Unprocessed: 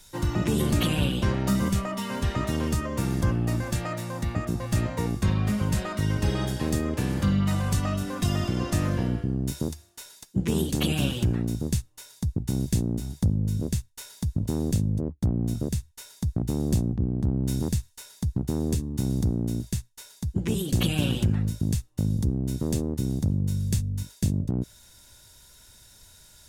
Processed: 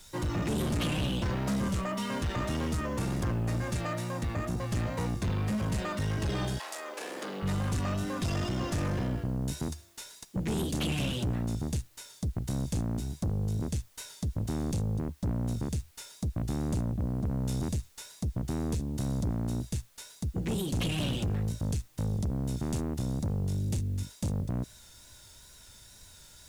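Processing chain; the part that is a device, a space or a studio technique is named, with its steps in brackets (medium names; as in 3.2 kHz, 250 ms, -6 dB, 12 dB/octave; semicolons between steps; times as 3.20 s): compact cassette (saturation -26.5 dBFS, distortion -9 dB; low-pass 11 kHz 12 dB/octave; wow and flutter; white noise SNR 33 dB); 6.58–7.42 s: high-pass 730 Hz -> 250 Hz 24 dB/octave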